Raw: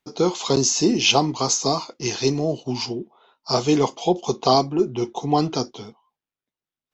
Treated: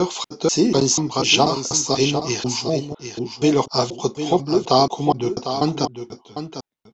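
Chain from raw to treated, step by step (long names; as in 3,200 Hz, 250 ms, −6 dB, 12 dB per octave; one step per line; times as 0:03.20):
slices reordered back to front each 244 ms, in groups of 2
single-tap delay 751 ms −9.5 dB
level +1.5 dB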